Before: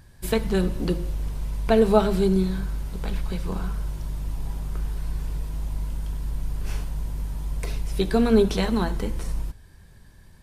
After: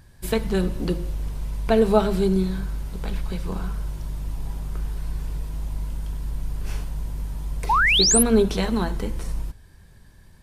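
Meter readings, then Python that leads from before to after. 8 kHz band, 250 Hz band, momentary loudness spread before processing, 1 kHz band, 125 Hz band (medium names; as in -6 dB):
+16.5 dB, 0.0 dB, 13 LU, +4.5 dB, 0.0 dB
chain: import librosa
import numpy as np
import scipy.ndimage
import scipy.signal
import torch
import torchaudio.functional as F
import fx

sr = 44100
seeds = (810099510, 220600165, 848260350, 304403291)

y = fx.spec_paint(x, sr, seeds[0], shape='rise', start_s=7.69, length_s=0.54, low_hz=810.0, high_hz=12000.0, level_db=-18.0)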